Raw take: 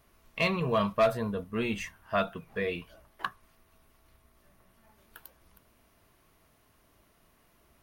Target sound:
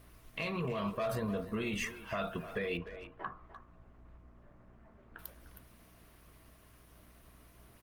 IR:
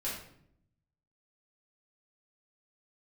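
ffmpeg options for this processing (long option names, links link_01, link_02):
-filter_complex "[0:a]alimiter=level_in=4dB:limit=-24dB:level=0:latency=1:release=15,volume=-4dB,aeval=exprs='val(0)+0.000631*(sin(2*PI*60*n/s)+sin(2*PI*2*60*n/s)/2+sin(2*PI*3*60*n/s)/3+sin(2*PI*4*60*n/s)/4+sin(2*PI*5*60*n/s)/5)':channel_layout=same,acompressor=threshold=-38dB:ratio=3,bandreject=frequency=860:width=12,bandreject=frequency=46.99:width_type=h:width=4,bandreject=frequency=93.98:width_type=h:width=4,bandreject=frequency=140.97:width_type=h:width=4,bandreject=frequency=187.96:width_type=h:width=4,bandreject=frequency=234.95:width_type=h:width=4,bandreject=frequency=281.94:width_type=h:width=4,bandreject=frequency=328.93:width_type=h:width=4,bandreject=frequency=375.92:width_type=h:width=4,bandreject=frequency=422.91:width_type=h:width=4,bandreject=frequency=469.9:width_type=h:width=4,bandreject=frequency=516.89:width_type=h:width=4,bandreject=frequency=563.88:width_type=h:width=4,bandreject=frequency=610.87:width_type=h:width=4,bandreject=frequency=657.86:width_type=h:width=4,bandreject=frequency=704.85:width_type=h:width=4,bandreject=frequency=751.84:width_type=h:width=4,bandreject=frequency=798.83:width_type=h:width=4,bandreject=frequency=845.82:width_type=h:width=4,bandreject=frequency=892.81:width_type=h:width=4,bandreject=frequency=939.8:width_type=h:width=4,bandreject=frequency=986.79:width_type=h:width=4,bandreject=frequency=1033.78:width_type=h:width=4,bandreject=frequency=1080.77:width_type=h:width=4,bandreject=frequency=1127.76:width_type=h:width=4,bandreject=frequency=1174.75:width_type=h:width=4,bandreject=frequency=1221.74:width_type=h:width=4,bandreject=frequency=1268.73:width_type=h:width=4,bandreject=frequency=1315.72:width_type=h:width=4,bandreject=frequency=1362.71:width_type=h:width=4,bandreject=frequency=1409.7:width_type=h:width=4,bandreject=frequency=1456.69:width_type=h:width=4,asettb=1/sr,asplit=3[link_01][link_02][link_03];[link_01]atrim=end=2.774[link_04];[link_02]atrim=start=2.77:end=5.19,asetpts=PTS-STARTPTS,afade=type=in:duration=0.004:curve=qsin,afade=type=out:start_time=2.416:duration=0.004:curve=qsin,lowpass=1400[link_05];[link_03]atrim=start=5.186[link_06];[link_04][link_05]acrossfade=duration=0.004:curve1=hsin:curve2=qsin[link_07];[link_07][link_06]acrossfade=duration=0.004:curve1=qsin:curve2=hsin,asplit=2[link_08][link_09];[link_09]adelay=300,highpass=300,lowpass=3400,asoftclip=type=hard:threshold=-36.5dB,volume=-11dB[link_10];[link_08][link_10]amix=inputs=2:normalize=0,volume=5dB" -ar 48000 -c:a libopus -b:a 20k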